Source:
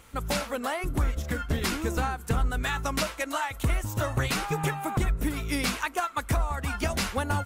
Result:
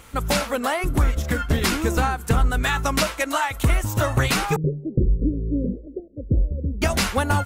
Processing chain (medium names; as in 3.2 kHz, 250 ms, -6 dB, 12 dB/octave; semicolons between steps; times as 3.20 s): 4.56–6.82 s: steep low-pass 550 Hz 96 dB/octave; trim +7 dB